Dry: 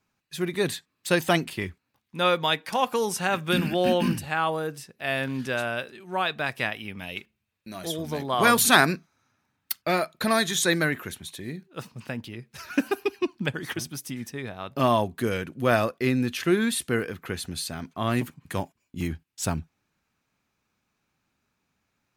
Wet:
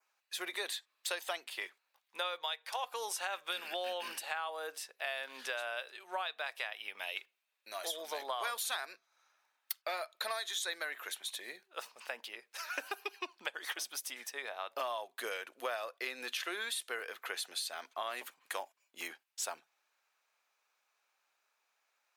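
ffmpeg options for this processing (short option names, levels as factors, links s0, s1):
-filter_complex "[0:a]asettb=1/sr,asplit=3[s0][s1][s2];[s0]atrim=end=2.434[s3];[s1]atrim=start=2.43:end=2.84,asetpts=PTS-STARTPTS,afade=t=in:d=0.004:c=qsin,afade=t=out:st=0.406:d=0.004:c=qsin,highpass=f=410:w=0.5412,highpass=f=410:w=1.3066[s4];[s2]atrim=start=2.836[s5];[s3][s4]acrossfade=d=0.004:c1=hsin:c2=qsin[s6];[s6][s5]acrossfade=d=0.004:c1=qsin:c2=hsin,highpass=f=560:w=0.5412,highpass=f=560:w=1.3066,adynamicequalizer=threshold=0.00891:dfrequency=3600:dqfactor=2.8:tfrequency=3600:tqfactor=2.8:attack=5:release=100:ratio=0.375:range=2.5:mode=boostabove:tftype=bell,acompressor=threshold=0.02:ratio=8,volume=0.891"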